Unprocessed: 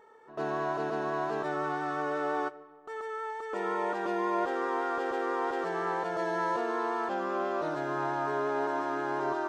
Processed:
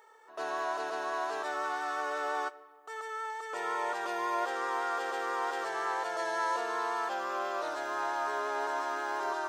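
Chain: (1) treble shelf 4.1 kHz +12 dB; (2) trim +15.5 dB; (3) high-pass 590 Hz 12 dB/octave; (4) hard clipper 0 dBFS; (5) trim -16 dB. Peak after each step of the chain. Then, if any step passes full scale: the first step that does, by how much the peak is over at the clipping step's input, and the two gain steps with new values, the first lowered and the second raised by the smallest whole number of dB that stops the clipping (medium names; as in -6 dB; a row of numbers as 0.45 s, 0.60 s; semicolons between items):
-17.0 dBFS, -1.5 dBFS, -5.0 dBFS, -5.0 dBFS, -21.0 dBFS; nothing clips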